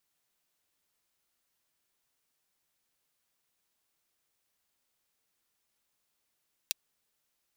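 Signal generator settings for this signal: closed hi-hat, high-pass 3.2 kHz, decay 0.02 s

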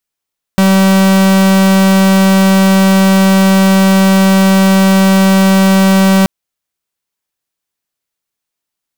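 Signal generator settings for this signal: pulse 192 Hz, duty 45% -7.5 dBFS 5.68 s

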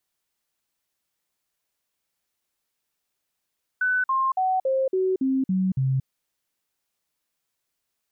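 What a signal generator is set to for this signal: stepped sine 1.5 kHz down, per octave 2, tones 8, 0.23 s, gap 0.05 s -19.5 dBFS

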